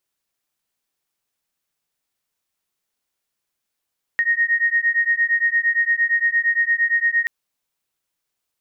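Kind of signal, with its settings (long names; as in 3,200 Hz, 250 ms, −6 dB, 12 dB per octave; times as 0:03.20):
two tones that beat 1,860 Hz, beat 8.7 Hz, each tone −19 dBFS 3.08 s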